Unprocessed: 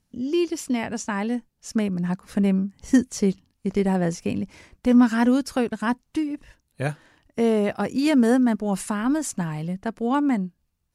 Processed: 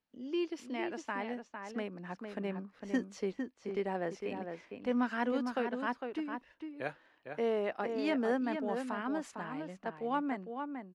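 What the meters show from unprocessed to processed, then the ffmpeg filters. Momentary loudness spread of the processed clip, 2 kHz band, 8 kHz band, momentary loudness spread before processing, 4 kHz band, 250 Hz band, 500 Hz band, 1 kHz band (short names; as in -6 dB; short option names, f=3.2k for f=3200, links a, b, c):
10 LU, -8.0 dB, under -20 dB, 12 LU, -11.5 dB, -15.5 dB, -9.0 dB, -8.0 dB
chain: -filter_complex "[0:a]acrossover=split=300 4200:gain=0.112 1 0.1[a][b][c];[a][b][c]amix=inputs=3:normalize=0,asplit=2[d][e];[e]adelay=454.8,volume=-6dB,highshelf=f=4k:g=-10.2[f];[d][f]amix=inputs=2:normalize=0,volume=-8.5dB"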